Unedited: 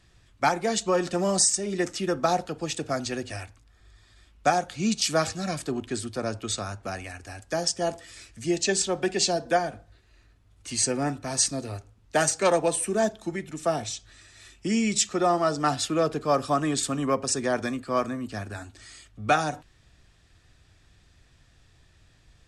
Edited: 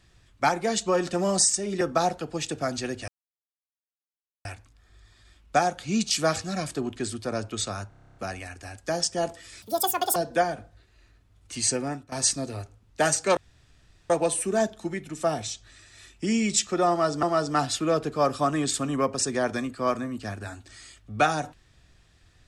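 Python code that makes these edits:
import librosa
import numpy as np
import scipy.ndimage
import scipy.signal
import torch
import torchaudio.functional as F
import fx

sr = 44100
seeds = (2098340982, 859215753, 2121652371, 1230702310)

y = fx.edit(x, sr, fx.cut(start_s=1.81, length_s=0.28),
    fx.insert_silence(at_s=3.36, length_s=1.37),
    fx.stutter(start_s=6.8, slice_s=0.03, count=10),
    fx.speed_span(start_s=8.26, length_s=1.05, speed=1.95),
    fx.fade_out_to(start_s=10.87, length_s=0.4, floor_db=-16.5),
    fx.insert_room_tone(at_s=12.52, length_s=0.73),
    fx.repeat(start_s=15.32, length_s=0.33, count=2), tone=tone)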